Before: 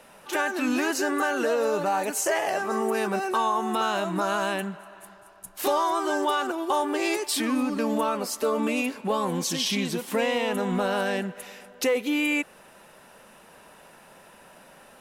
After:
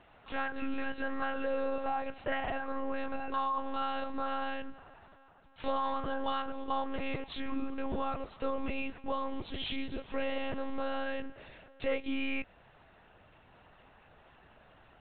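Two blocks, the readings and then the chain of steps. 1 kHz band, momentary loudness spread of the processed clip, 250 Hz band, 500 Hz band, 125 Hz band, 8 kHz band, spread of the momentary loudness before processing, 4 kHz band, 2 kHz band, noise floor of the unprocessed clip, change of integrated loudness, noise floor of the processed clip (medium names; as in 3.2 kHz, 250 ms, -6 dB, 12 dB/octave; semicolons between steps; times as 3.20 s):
-9.0 dB, 5 LU, -10.5 dB, -10.5 dB, -11.5 dB, under -40 dB, 5 LU, -12.0 dB, -10.5 dB, -52 dBFS, -10.0 dB, -61 dBFS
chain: monotone LPC vocoder at 8 kHz 270 Hz; trim -8 dB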